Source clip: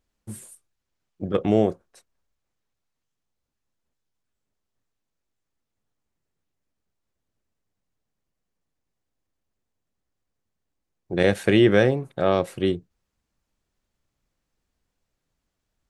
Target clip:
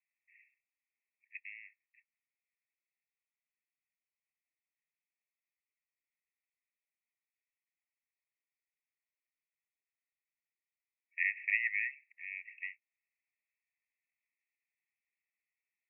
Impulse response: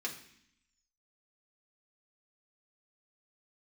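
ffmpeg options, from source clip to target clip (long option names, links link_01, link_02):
-af "asuperpass=centerf=2200:order=20:qfactor=2.6"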